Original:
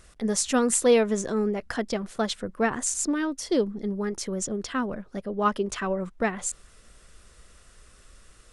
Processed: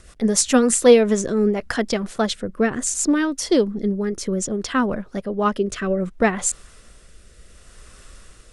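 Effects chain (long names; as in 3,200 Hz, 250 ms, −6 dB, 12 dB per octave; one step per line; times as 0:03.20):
rotating-speaker cabinet horn 7 Hz, later 0.65 Hz, at 0:00.53
level +8.5 dB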